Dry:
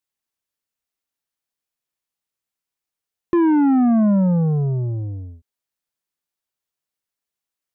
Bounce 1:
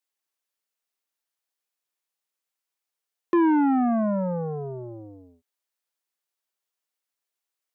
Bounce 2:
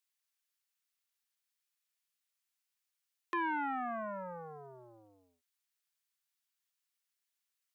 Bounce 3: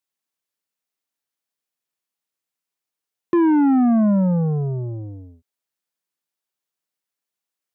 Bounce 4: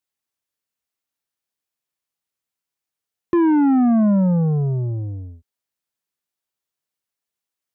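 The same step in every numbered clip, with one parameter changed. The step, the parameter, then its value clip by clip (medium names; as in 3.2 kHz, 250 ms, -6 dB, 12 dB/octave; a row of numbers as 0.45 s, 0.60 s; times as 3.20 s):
high-pass, cutoff frequency: 360 Hz, 1.4 kHz, 140 Hz, 47 Hz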